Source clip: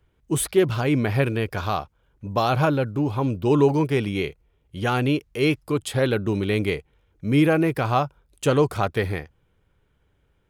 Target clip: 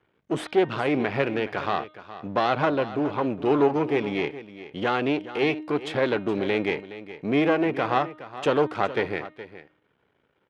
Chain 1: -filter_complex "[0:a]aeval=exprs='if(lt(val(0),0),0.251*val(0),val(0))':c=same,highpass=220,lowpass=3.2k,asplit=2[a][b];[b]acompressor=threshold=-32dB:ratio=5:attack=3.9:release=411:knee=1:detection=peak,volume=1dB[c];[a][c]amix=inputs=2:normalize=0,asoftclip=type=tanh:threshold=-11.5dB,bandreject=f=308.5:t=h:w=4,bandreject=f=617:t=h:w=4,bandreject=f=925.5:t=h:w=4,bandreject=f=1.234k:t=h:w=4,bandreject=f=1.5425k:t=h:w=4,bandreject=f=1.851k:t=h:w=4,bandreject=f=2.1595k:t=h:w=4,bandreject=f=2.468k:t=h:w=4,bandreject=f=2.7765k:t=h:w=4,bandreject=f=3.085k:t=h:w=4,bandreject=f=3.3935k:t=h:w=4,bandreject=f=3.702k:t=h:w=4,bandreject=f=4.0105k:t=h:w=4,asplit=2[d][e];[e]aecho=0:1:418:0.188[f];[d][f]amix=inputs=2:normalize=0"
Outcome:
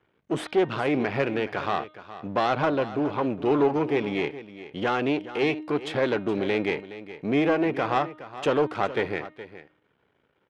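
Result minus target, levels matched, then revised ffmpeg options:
soft clip: distortion +21 dB
-filter_complex "[0:a]aeval=exprs='if(lt(val(0),0),0.251*val(0),val(0))':c=same,highpass=220,lowpass=3.2k,asplit=2[a][b];[b]acompressor=threshold=-32dB:ratio=5:attack=3.9:release=411:knee=1:detection=peak,volume=1dB[c];[a][c]amix=inputs=2:normalize=0,asoftclip=type=tanh:threshold=0dB,bandreject=f=308.5:t=h:w=4,bandreject=f=617:t=h:w=4,bandreject=f=925.5:t=h:w=4,bandreject=f=1.234k:t=h:w=4,bandreject=f=1.5425k:t=h:w=4,bandreject=f=1.851k:t=h:w=4,bandreject=f=2.1595k:t=h:w=4,bandreject=f=2.468k:t=h:w=4,bandreject=f=2.7765k:t=h:w=4,bandreject=f=3.085k:t=h:w=4,bandreject=f=3.3935k:t=h:w=4,bandreject=f=3.702k:t=h:w=4,bandreject=f=4.0105k:t=h:w=4,asplit=2[d][e];[e]aecho=0:1:418:0.188[f];[d][f]amix=inputs=2:normalize=0"

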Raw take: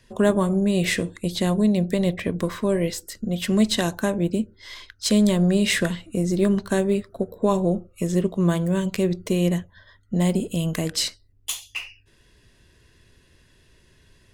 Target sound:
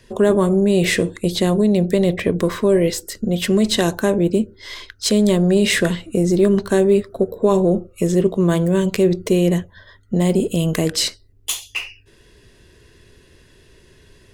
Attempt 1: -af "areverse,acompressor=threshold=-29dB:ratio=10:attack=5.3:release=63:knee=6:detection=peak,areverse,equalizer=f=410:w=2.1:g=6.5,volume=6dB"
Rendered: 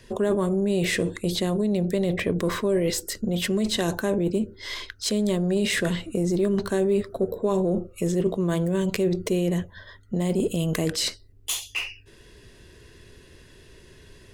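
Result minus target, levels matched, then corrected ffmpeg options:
compressor: peak gain reduction +9 dB
-af "areverse,acompressor=threshold=-19dB:ratio=10:attack=5.3:release=63:knee=6:detection=peak,areverse,equalizer=f=410:w=2.1:g=6.5,volume=6dB"

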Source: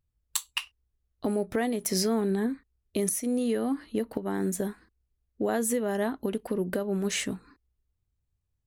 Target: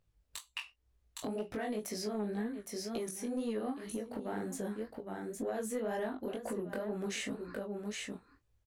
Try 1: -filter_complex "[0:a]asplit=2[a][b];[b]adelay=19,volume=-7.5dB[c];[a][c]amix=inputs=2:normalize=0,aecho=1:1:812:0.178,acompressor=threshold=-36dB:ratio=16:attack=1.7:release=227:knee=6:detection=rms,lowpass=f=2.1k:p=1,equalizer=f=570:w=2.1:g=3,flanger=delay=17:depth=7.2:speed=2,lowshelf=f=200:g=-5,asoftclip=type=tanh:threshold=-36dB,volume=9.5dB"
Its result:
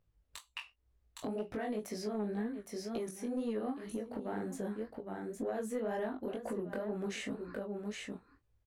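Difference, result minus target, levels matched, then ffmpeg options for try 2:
4000 Hz band -3.5 dB
-filter_complex "[0:a]asplit=2[a][b];[b]adelay=19,volume=-7.5dB[c];[a][c]amix=inputs=2:normalize=0,aecho=1:1:812:0.178,acompressor=threshold=-36dB:ratio=16:attack=1.7:release=227:knee=6:detection=rms,lowpass=f=5.2k:p=1,equalizer=f=570:w=2.1:g=3,flanger=delay=17:depth=7.2:speed=2,lowshelf=f=200:g=-5,asoftclip=type=tanh:threshold=-36dB,volume=9.5dB"

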